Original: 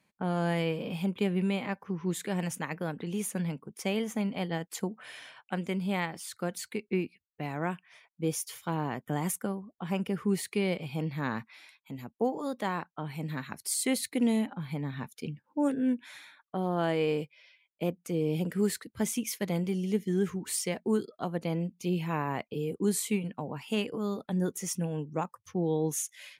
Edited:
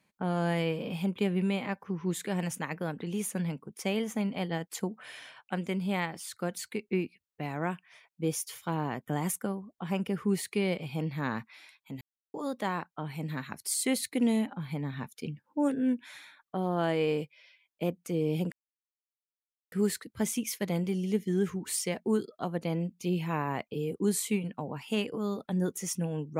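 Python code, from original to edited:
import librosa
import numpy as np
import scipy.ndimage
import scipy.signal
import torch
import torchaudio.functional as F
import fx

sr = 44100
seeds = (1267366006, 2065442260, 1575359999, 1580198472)

y = fx.edit(x, sr, fx.silence(start_s=12.01, length_s=0.33),
    fx.insert_silence(at_s=18.52, length_s=1.2), tone=tone)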